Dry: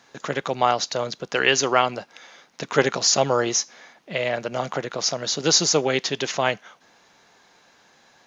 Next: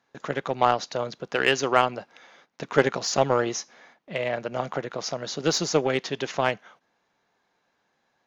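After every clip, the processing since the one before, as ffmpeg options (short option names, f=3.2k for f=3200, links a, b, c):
-af "agate=range=-11dB:threshold=-50dB:ratio=16:detection=peak,highshelf=f=3.7k:g=-10.5,aeval=exprs='0.708*(cos(1*acos(clip(val(0)/0.708,-1,1)))-cos(1*PI/2))+0.0282*(cos(7*acos(clip(val(0)/0.708,-1,1)))-cos(7*PI/2))':c=same"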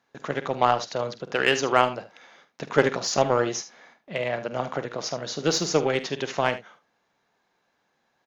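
-af "aecho=1:1:48|75:0.211|0.188"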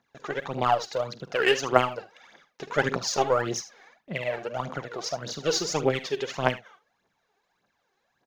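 -af "aphaser=in_gain=1:out_gain=1:delay=2.8:decay=0.67:speed=1.7:type=triangular,volume=-4.5dB"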